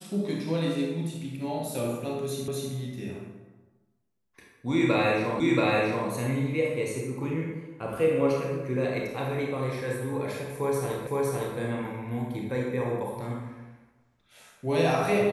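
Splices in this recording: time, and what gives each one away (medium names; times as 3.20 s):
2.48 s: repeat of the last 0.25 s
5.40 s: repeat of the last 0.68 s
11.07 s: repeat of the last 0.51 s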